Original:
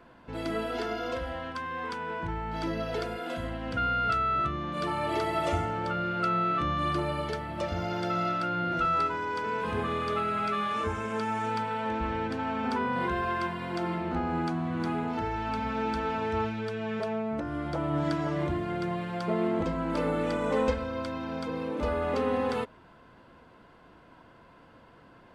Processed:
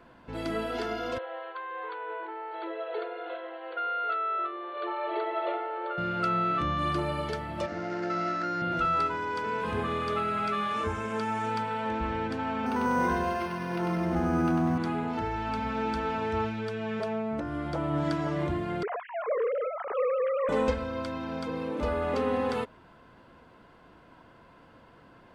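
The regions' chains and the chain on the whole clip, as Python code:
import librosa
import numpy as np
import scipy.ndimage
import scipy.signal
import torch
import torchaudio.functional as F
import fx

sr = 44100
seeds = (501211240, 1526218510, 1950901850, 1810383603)

y = fx.chain(x, sr, fx.brickwall_bandpass(low_hz=330.0, high_hz=4500.0),
    fx.high_shelf(hz=2300.0, db=-10.0), at=(1.18, 5.98))
y = fx.chain(y, sr, fx.median_filter(points=15),
    fx.cabinet(low_hz=210.0, low_slope=12, high_hz=5800.0, hz=(320.0, 510.0, 860.0, 1800.0, 3400.0), db=(4, -3, -5, 7, -8)), at=(7.66, 8.62))
y = fx.chain(y, sr, fx.doubler(ms=27.0, db=-13.0),
    fx.echo_feedback(ms=97, feedback_pct=50, wet_db=-4.5),
    fx.resample_linear(factor=6), at=(12.66, 14.78))
y = fx.chain(y, sr, fx.sine_speech(),
    fx.lowpass(hz=2500.0, slope=12), at=(18.83, 20.49))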